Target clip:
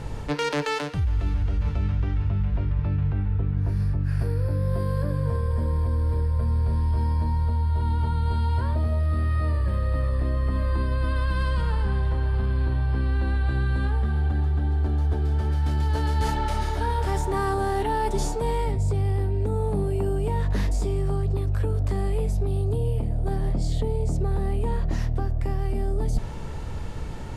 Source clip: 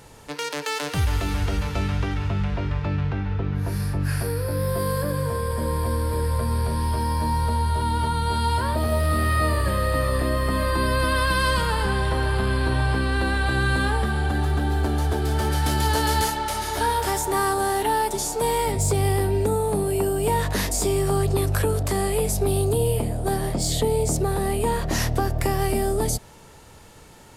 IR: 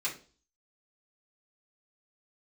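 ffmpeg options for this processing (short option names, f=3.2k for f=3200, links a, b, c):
-af "aemphasis=mode=reproduction:type=bsi,alimiter=limit=-7dB:level=0:latency=1:release=100,areverse,acompressor=threshold=-28dB:ratio=10,areverse,volume=7dB"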